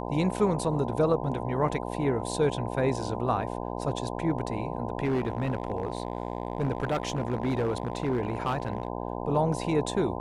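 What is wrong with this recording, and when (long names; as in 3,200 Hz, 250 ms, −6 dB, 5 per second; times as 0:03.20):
mains buzz 60 Hz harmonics 17 −34 dBFS
0:05.04–0:08.88: clipping −22.5 dBFS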